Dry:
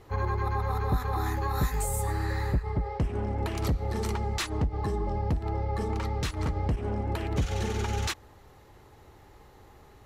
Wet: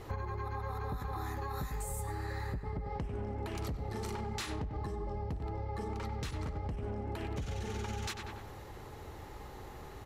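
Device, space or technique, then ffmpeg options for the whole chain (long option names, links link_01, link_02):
serial compression, peaks first: -filter_complex "[0:a]asettb=1/sr,asplit=3[link_01][link_02][link_03];[link_01]atrim=end=3.754[link_04];[link_02]atrim=start=3.75:end=4.58,asetpts=PTS-STARTPTS,afade=type=in:duration=0.004:curve=qsin,afade=type=out:start_time=0.826:duration=0.004:curve=qsin,asplit=2[link_05][link_06];[link_06]adelay=36,volume=-9dB[link_07];[link_05][link_07]amix=inputs=2:normalize=0,atrim=end_sample=36603[link_08];[link_03]atrim=start=4.576[link_09];[link_04][link_08]acrossfade=duration=0.004:curve1=hsin:curve2=qsin[link_10];[link_10][link_09]acrossfade=duration=0.004:curve1=qsin:curve2=hsin,asplit=2[link_11][link_12];[link_12]adelay=95,lowpass=frequency=2500:poles=1,volume=-10dB,asplit=2[link_13][link_14];[link_14]adelay=95,lowpass=frequency=2500:poles=1,volume=0.51,asplit=2[link_15][link_16];[link_16]adelay=95,lowpass=frequency=2500:poles=1,volume=0.51,asplit=2[link_17][link_18];[link_18]adelay=95,lowpass=frequency=2500:poles=1,volume=0.51,asplit=2[link_19][link_20];[link_20]adelay=95,lowpass=frequency=2500:poles=1,volume=0.51,asplit=2[link_21][link_22];[link_22]adelay=95,lowpass=frequency=2500:poles=1,volume=0.51[link_23];[link_11][link_13][link_15][link_17][link_19][link_21][link_23]amix=inputs=7:normalize=0,acompressor=threshold=-37dB:ratio=6,acompressor=threshold=-41dB:ratio=3,volume=5.5dB"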